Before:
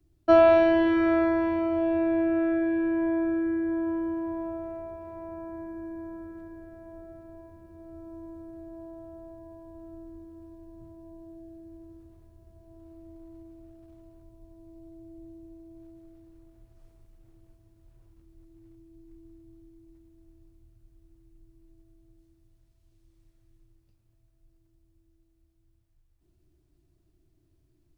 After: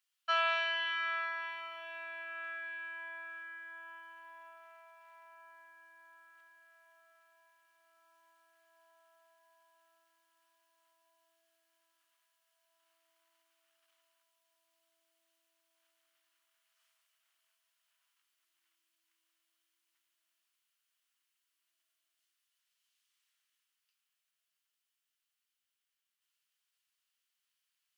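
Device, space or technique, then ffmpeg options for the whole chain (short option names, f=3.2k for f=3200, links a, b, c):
headphones lying on a table: -af "highpass=f=1.3k:w=0.5412,highpass=f=1.3k:w=1.3066,equalizer=f=480:t=o:w=0.31:g=-3,equalizer=f=3k:t=o:w=0.26:g=8"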